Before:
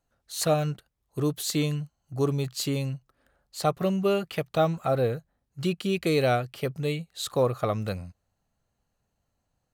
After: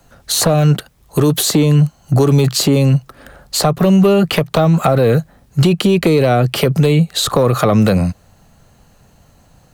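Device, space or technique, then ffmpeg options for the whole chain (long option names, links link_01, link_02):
mastering chain: -filter_complex "[0:a]equalizer=frequency=160:width_type=o:width=0.77:gain=3.5,acrossover=split=140|300|1200[link_01][link_02][link_03][link_04];[link_01]acompressor=threshold=-48dB:ratio=4[link_05];[link_02]acompressor=threshold=-32dB:ratio=4[link_06];[link_03]acompressor=threshold=-31dB:ratio=4[link_07];[link_04]acompressor=threshold=-44dB:ratio=4[link_08];[link_05][link_06][link_07][link_08]amix=inputs=4:normalize=0,acompressor=threshold=-32dB:ratio=2,asoftclip=type=tanh:threshold=-23dB,asoftclip=type=hard:threshold=-26.5dB,alimiter=level_in=31.5dB:limit=-1dB:release=50:level=0:latency=1,volume=-4dB"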